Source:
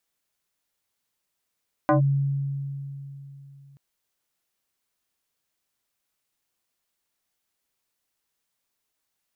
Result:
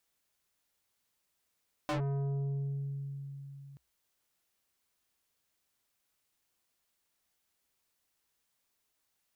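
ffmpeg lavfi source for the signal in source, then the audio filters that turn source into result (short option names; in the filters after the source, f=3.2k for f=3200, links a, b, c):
-f lavfi -i "aevalsrc='0.178*pow(10,-3*t/3.33)*sin(2*PI*139*t+2.6*clip(1-t/0.12,0,1)*sin(2*PI*3.22*139*t))':d=1.88:s=44100"
-af "equalizer=f=64:t=o:w=0.26:g=8,asoftclip=type=tanh:threshold=-32dB"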